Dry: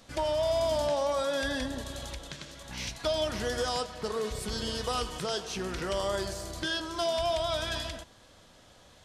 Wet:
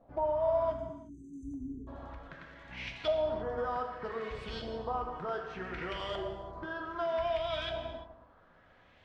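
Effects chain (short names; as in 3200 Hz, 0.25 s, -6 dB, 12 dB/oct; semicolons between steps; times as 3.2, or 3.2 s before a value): spectral delete 0.73–1.87, 440–6000 Hz; LFO low-pass saw up 0.65 Hz 690–3100 Hz; non-linear reverb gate 0.38 s falling, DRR 3.5 dB; gain -7.5 dB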